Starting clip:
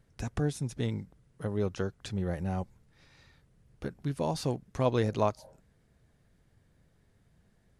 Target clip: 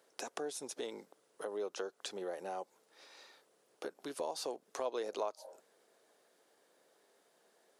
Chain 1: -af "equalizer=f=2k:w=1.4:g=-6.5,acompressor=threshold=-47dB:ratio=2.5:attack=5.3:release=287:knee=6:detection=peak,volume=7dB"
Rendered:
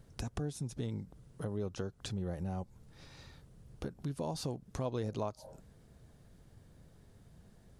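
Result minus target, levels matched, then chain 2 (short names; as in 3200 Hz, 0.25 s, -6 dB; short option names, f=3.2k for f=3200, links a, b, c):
500 Hz band -4.0 dB
-af "highpass=f=400:w=0.5412,highpass=f=400:w=1.3066,equalizer=f=2k:w=1.4:g=-6.5,acompressor=threshold=-47dB:ratio=2.5:attack=5.3:release=287:knee=6:detection=peak,volume=7dB"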